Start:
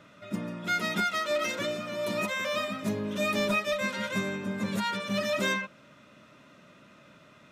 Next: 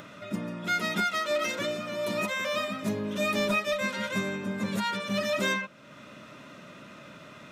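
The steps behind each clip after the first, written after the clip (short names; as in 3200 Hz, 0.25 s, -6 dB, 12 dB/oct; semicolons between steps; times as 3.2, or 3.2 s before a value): bell 64 Hz -3.5 dB 1.1 oct; in parallel at -2 dB: upward compressor, threshold -31 dBFS; on the sum: gain -4.5 dB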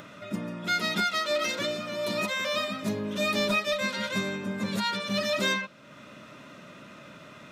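dynamic EQ 4300 Hz, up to +7 dB, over -51 dBFS, Q 2.1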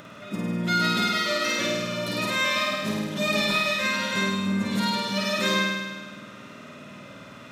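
flutter echo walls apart 8.8 m, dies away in 1.4 s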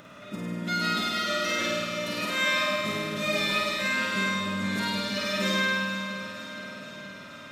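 echo with dull and thin repeats by turns 0.235 s, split 810 Hz, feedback 81%, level -10.5 dB; Schroeder reverb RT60 1.2 s, combs from 28 ms, DRR 3.5 dB; gain -4.5 dB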